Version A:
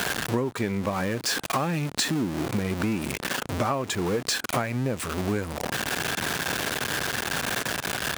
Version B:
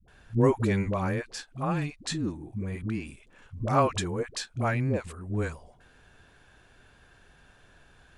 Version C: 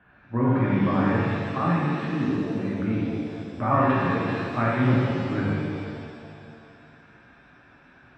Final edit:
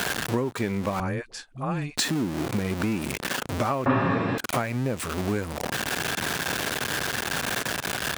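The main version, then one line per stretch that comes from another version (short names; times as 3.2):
A
1–1.97 from B
3.86–4.38 from C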